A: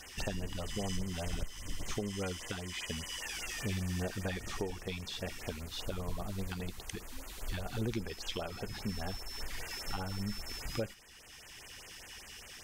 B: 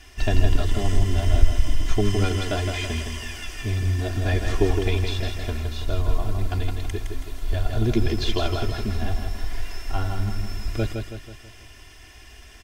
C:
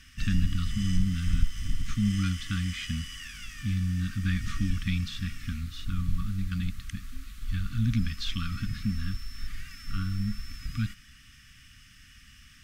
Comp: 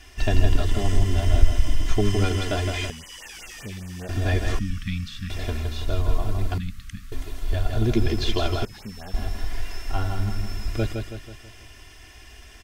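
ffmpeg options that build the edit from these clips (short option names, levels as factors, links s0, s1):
-filter_complex "[0:a]asplit=2[s0][s1];[2:a]asplit=2[s2][s3];[1:a]asplit=5[s4][s5][s6][s7][s8];[s4]atrim=end=2.902[s9];[s0]atrim=start=2.898:end=4.092[s10];[s5]atrim=start=4.088:end=4.592[s11];[s2]atrim=start=4.588:end=5.302[s12];[s6]atrim=start=5.298:end=6.582[s13];[s3]atrim=start=6.578:end=7.122[s14];[s7]atrim=start=7.118:end=8.652[s15];[s1]atrim=start=8.648:end=9.142[s16];[s8]atrim=start=9.138[s17];[s9][s10]acrossfade=d=0.004:c1=hsin:c2=hsin[s18];[s18][s11]acrossfade=d=0.004:c1=hsin:c2=hsin[s19];[s19][s12]acrossfade=d=0.004:c1=hsin:c2=hsin[s20];[s20][s13]acrossfade=d=0.004:c1=hsin:c2=hsin[s21];[s21][s14]acrossfade=d=0.004:c1=hsin:c2=hsin[s22];[s22][s15]acrossfade=d=0.004:c1=hsin:c2=hsin[s23];[s23][s16]acrossfade=d=0.004:c1=hsin:c2=hsin[s24];[s24][s17]acrossfade=d=0.004:c1=hsin:c2=hsin"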